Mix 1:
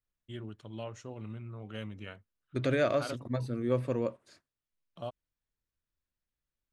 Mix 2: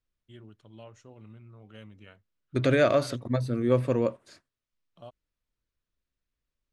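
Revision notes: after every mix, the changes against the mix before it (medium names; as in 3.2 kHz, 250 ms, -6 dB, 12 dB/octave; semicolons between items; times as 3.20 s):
first voice -7.0 dB; second voice +6.0 dB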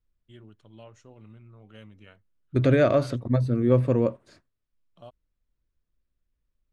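second voice: add tilt EQ -2 dB/octave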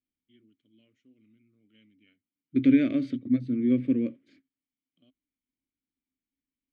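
second voice +7.5 dB; master: add vowel filter i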